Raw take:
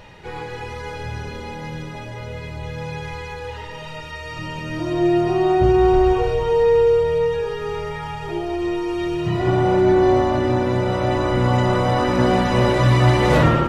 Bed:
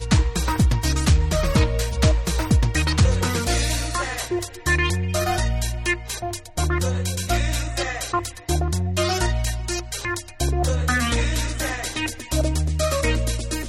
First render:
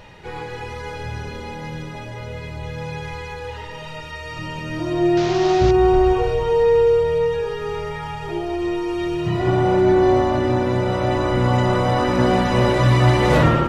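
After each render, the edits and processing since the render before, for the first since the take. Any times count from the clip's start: 5.17–5.71 s: one-bit delta coder 32 kbps, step -21 dBFS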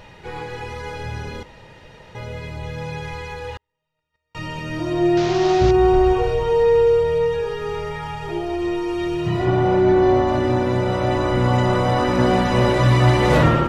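1.43–2.15 s: room tone; 3.57–4.35 s: gate -27 dBFS, range -46 dB; 9.45–10.28 s: distance through air 67 m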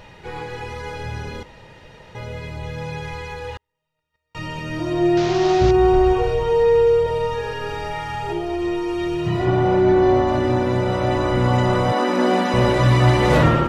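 7.02–8.33 s: flutter echo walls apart 7.2 m, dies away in 0.81 s; 11.92–12.54 s: brick-wall FIR high-pass 180 Hz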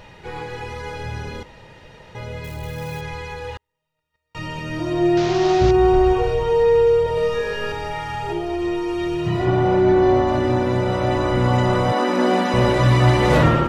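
2.44–3.01 s: zero-crossing glitches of -34.5 dBFS; 7.15–7.72 s: doubling 21 ms -2 dB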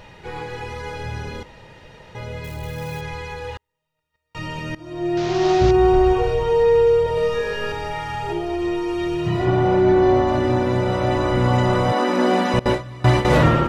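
4.75–5.48 s: fade in, from -19.5 dB; 12.59–13.25 s: gate with hold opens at -5 dBFS, closes at -10 dBFS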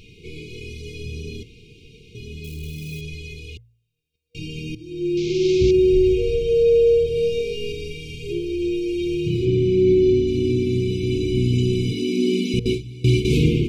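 de-hum 57.73 Hz, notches 3; FFT band-reject 480–2100 Hz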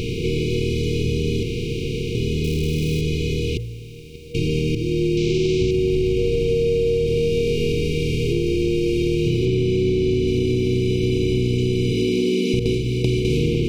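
spectral levelling over time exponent 0.4; compression, threshold -16 dBFS, peak gain reduction 7.5 dB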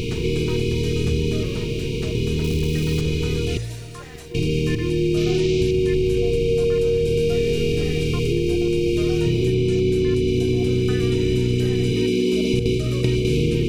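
add bed -16 dB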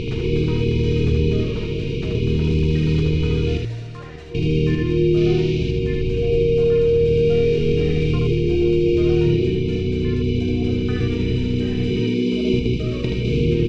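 distance through air 170 m; delay 77 ms -4 dB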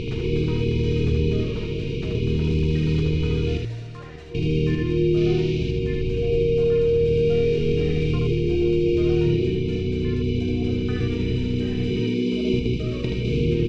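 trim -3 dB

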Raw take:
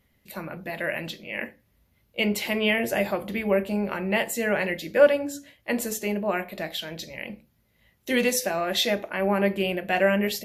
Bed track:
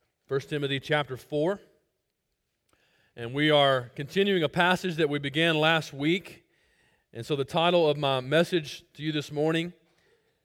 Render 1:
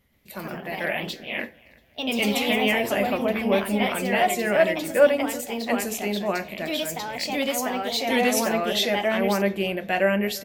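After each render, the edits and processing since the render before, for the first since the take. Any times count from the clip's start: feedback delay 344 ms, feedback 41%, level -24 dB; ever faster or slower copies 124 ms, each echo +2 st, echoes 2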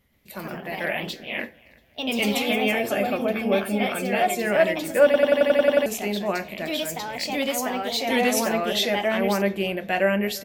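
2.42–4.41 s: comb of notches 980 Hz; 5.05 s: stutter in place 0.09 s, 9 plays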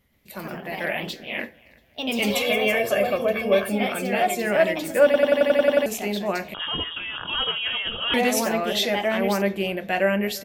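2.30–3.70 s: comb 1.8 ms; 6.54–8.14 s: frequency inversion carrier 3.5 kHz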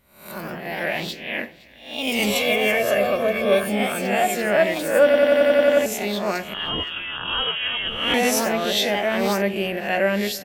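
reverse spectral sustain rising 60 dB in 0.55 s; delay 516 ms -22.5 dB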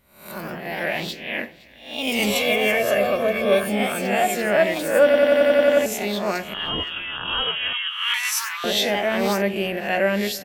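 7.73–8.64 s: steep high-pass 980 Hz 72 dB/octave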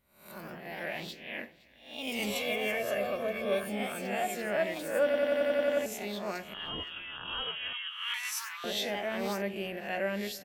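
trim -12 dB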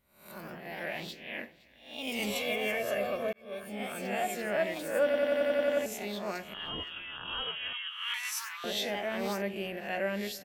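3.33–4.04 s: fade in

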